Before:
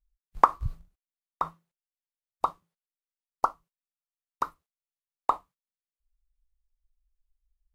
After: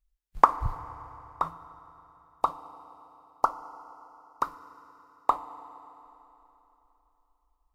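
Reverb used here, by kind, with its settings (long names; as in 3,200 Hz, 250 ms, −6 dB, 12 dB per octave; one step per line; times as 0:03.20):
feedback delay network reverb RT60 3.4 s, high-frequency decay 0.9×, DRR 12.5 dB
level +1 dB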